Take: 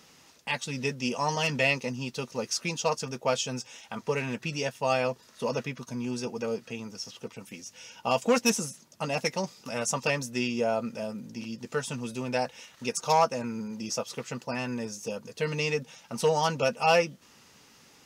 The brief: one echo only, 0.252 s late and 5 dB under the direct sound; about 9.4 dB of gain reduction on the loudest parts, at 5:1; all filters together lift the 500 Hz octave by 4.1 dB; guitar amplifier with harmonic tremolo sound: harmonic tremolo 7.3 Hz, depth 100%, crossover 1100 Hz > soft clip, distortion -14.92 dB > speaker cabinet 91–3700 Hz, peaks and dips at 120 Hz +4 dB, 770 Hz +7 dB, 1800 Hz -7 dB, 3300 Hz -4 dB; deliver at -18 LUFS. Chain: bell 500 Hz +3.5 dB; compressor 5:1, threshold -26 dBFS; echo 0.252 s -5 dB; harmonic tremolo 7.3 Hz, depth 100%, crossover 1100 Hz; soft clip -27.5 dBFS; speaker cabinet 91–3700 Hz, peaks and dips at 120 Hz +4 dB, 770 Hz +7 dB, 1800 Hz -7 dB, 3300 Hz -4 dB; gain +20 dB

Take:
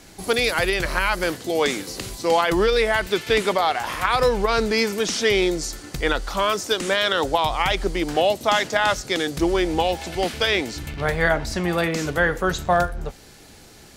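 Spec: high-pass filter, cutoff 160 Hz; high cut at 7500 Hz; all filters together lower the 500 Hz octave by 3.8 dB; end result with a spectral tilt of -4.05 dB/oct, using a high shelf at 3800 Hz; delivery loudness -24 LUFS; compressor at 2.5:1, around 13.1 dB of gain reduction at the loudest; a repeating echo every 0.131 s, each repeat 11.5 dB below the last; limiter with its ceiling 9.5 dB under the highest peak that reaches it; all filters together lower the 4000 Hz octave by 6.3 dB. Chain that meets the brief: HPF 160 Hz; LPF 7500 Hz; bell 500 Hz -4.5 dB; high shelf 3800 Hz -4 dB; bell 4000 Hz -5.5 dB; compressor 2.5:1, threshold -38 dBFS; limiter -30 dBFS; feedback echo 0.131 s, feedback 27%, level -11.5 dB; gain +15.5 dB

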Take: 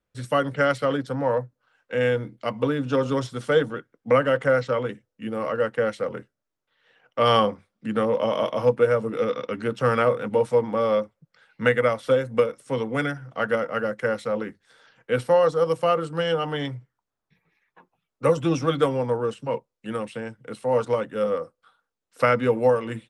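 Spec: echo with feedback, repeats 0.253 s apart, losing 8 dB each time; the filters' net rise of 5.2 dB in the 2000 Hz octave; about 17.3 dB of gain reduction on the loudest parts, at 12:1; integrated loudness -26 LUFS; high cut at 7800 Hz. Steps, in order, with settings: LPF 7800 Hz; bell 2000 Hz +7 dB; compressor 12:1, threshold -31 dBFS; feedback echo 0.253 s, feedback 40%, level -8 dB; gain +9.5 dB

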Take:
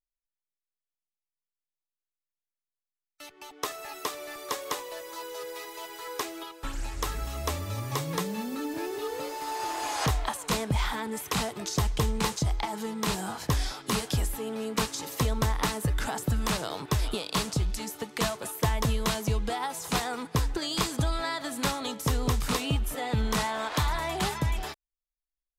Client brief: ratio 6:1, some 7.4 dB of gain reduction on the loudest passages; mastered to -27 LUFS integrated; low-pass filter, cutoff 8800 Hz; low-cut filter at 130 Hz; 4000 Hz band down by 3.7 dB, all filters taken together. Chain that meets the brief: HPF 130 Hz; LPF 8800 Hz; bell 4000 Hz -4.5 dB; compressor 6:1, threshold -32 dBFS; gain +10 dB

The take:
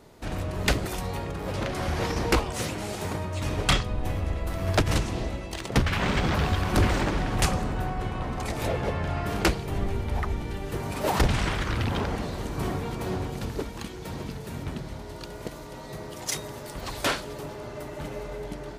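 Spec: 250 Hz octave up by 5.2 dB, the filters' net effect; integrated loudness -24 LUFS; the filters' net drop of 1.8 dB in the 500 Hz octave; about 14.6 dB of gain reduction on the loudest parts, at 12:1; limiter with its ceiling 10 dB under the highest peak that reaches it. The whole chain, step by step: bell 250 Hz +8.5 dB; bell 500 Hz -5.5 dB; compressor 12:1, threshold -30 dBFS; gain +13.5 dB; limiter -14 dBFS

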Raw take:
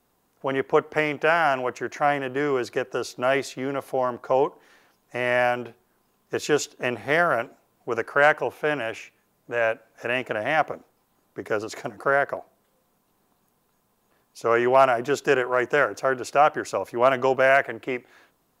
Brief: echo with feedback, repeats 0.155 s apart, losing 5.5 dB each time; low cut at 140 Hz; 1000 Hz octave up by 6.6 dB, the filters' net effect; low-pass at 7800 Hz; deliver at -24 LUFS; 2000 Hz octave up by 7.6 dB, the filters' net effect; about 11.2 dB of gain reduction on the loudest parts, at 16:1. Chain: HPF 140 Hz; LPF 7800 Hz; bell 1000 Hz +7.5 dB; bell 2000 Hz +7 dB; compressor 16:1, threshold -17 dBFS; feedback echo 0.155 s, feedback 53%, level -5.5 dB; gain -0.5 dB

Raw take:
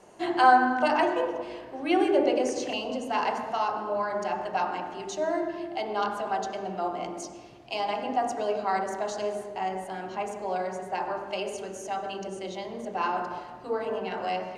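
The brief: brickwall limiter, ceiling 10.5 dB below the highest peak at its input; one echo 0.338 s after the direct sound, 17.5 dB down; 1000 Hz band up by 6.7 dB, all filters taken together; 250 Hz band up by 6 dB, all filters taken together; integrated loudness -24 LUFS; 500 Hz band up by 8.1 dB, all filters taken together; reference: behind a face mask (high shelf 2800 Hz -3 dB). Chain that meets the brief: bell 250 Hz +4 dB; bell 500 Hz +8 dB; bell 1000 Hz +5.5 dB; limiter -12 dBFS; high shelf 2800 Hz -3 dB; echo 0.338 s -17.5 dB

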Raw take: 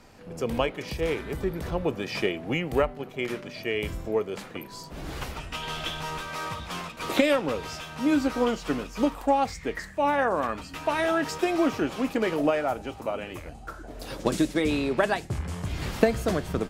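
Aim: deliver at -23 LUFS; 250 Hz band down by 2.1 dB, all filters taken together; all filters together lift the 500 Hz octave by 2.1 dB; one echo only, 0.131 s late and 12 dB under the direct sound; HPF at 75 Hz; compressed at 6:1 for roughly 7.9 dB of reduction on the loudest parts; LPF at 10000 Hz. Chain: HPF 75 Hz; LPF 10000 Hz; bell 250 Hz -4 dB; bell 500 Hz +3.5 dB; compressor 6:1, threshold -24 dBFS; echo 0.131 s -12 dB; gain +8 dB

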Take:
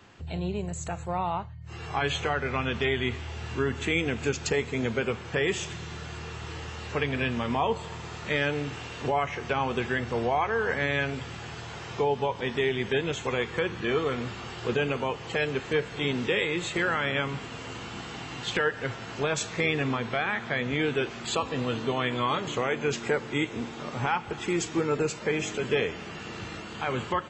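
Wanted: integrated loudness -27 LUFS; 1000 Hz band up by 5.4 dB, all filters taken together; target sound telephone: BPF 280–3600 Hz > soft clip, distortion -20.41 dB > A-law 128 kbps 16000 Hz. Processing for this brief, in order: BPF 280–3600 Hz; bell 1000 Hz +7 dB; soft clip -15 dBFS; gain +2 dB; A-law 128 kbps 16000 Hz

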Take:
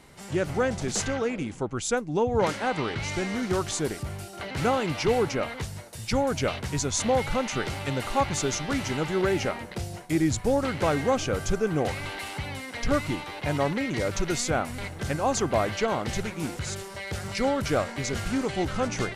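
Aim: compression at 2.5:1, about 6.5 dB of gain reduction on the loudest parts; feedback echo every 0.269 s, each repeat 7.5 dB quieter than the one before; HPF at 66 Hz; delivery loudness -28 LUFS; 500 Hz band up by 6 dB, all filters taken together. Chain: HPF 66 Hz; bell 500 Hz +7 dB; compressor 2.5:1, threshold -24 dBFS; feedback echo 0.269 s, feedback 42%, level -7.5 dB; gain -0.5 dB

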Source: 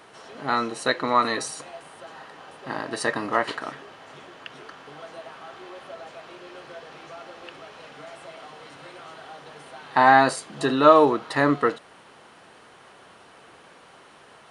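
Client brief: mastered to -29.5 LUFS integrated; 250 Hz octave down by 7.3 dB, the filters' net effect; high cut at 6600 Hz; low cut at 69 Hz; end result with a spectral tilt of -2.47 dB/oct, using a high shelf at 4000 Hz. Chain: HPF 69 Hz; LPF 6600 Hz; bell 250 Hz -9 dB; high shelf 4000 Hz -7.5 dB; gain -6.5 dB

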